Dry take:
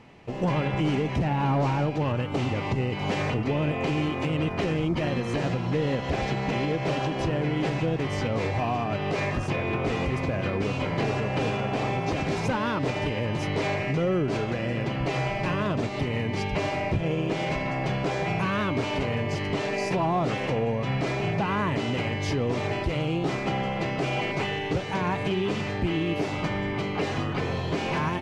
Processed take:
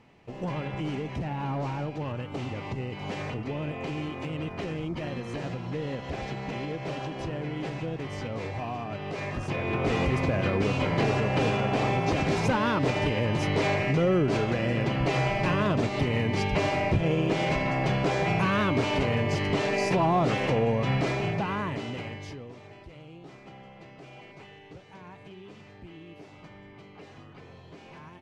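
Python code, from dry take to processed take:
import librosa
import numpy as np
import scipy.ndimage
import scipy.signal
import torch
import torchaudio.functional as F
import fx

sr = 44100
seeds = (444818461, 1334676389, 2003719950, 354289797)

y = fx.gain(x, sr, db=fx.line((9.17, -7.0), (9.96, 1.5), (20.93, 1.5), (22.14, -9.5), (22.6, -20.0)))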